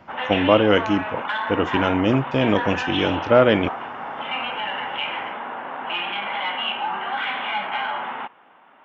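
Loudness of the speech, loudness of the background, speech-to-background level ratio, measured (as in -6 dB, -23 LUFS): -20.5 LUFS, -27.0 LUFS, 6.5 dB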